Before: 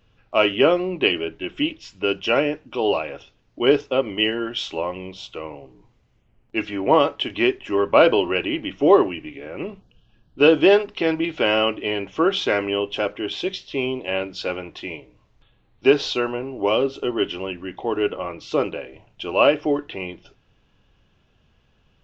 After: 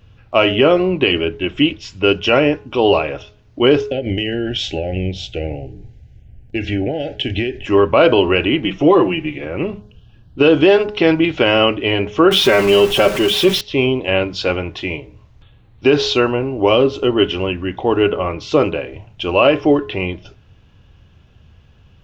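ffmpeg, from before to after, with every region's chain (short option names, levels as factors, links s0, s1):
-filter_complex "[0:a]asettb=1/sr,asplit=3[s0][s1][s2];[s0]atrim=end=3.904[s3];[s1]atrim=start=3.9:end=7.66,asetpts=PTS-STARTPTS,afade=t=in:d=0.004:c=qsin,afade=t=out:st=3.756:d=0.004:c=qsin,lowshelf=f=110:g=10,acompressor=threshold=0.0631:ratio=10:attack=3.2:release=140:knee=1:detection=peak,asuperstop=centerf=1100:order=12:qfactor=1.7[s4];[s2]atrim=start=7.656[s5];[s3][s4]acrossfade=d=0.004:c1=hsin:c2=qsin[s6];[s6][s5]acrossfade=d=0.004:c1=qsin:c2=hsin,asettb=1/sr,asplit=3[s7][s8][s9];[s7]atrim=end=8.644[s10];[s8]atrim=start=8.64:end=9.45,asetpts=PTS-STARTPTS,afade=t=in:d=0.004:c=qsin,afade=t=out:st=0.806:d=0.004:c=qsin,aecho=1:1:5.9:0.82,atrim=end_sample=35721,acompressor=threshold=0.0631:ratio=1.5:attack=3.2:release=140:knee=1:detection=peak[s11];[s9]atrim=start=9.446[s12];[s10][s11]acrossfade=d=0.004:c1=hsin:c2=qsin[s13];[s13][s12]acrossfade=d=0.004:c1=qsin:c2=hsin,asettb=1/sr,asplit=3[s14][s15][s16];[s14]atrim=end=12.314[s17];[s15]atrim=start=12.31:end=13.61,asetpts=PTS-STARTPTS,afade=t=in:d=0.004:c=qsin,afade=t=out:st=1.296:d=0.004:c=qsin,aeval=exprs='val(0)+0.5*0.0376*sgn(val(0))':c=same,aecho=1:1:5.2:0.66,atrim=end_sample=57330[s18];[s16]atrim=start=13.606[s19];[s17][s18]acrossfade=d=0.004:c1=hsin:c2=qsin[s20];[s20][s19]acrossfade=d=0.004:c1=qsin:c2=hsin,equalizer=f=86:w=0.92:g=11.5,bandreject=f=209.2:t=h:w=4,bandreject=f=418.4:t=h:w=4,bandreject=f=627.6:t=h:w=4,bandreject=f=836.8:t=h:w=4,bandreject=f=1046:t=h:w=4,bandreject=f=1255.2:t=h:w=4,bandreject=f=1464.4:t=h:w=4,alimiter=level_in=2.66:limit=0.891:release=50:level=0:latency=1,volume=0.891"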